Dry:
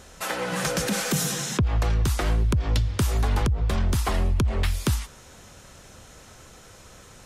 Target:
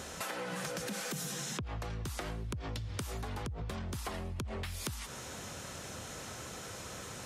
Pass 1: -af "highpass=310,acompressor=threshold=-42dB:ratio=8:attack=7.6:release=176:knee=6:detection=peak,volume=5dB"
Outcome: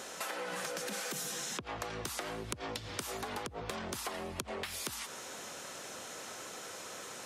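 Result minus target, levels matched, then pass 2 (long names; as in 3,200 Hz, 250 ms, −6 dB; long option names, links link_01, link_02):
125 Hz band −10.0 dB
-af "highpass=87,acompressor=threshold=-42dB:ratio=8:attack=7.6:release=176:knee=6:detection=peak,volume=5dB"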